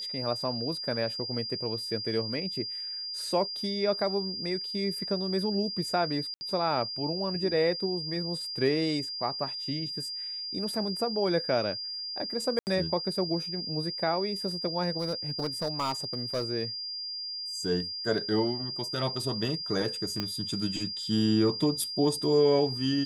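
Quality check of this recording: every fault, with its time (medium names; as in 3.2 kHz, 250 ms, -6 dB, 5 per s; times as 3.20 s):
whine 4.8 kHz -34 dBFS
6.34–6.41 s: dropout 70 ms
12.59–12.67 s: dropout 79 ms
14.99–16.44 s: clipped -25 dBFS
20.20 s: pop -16 dBFS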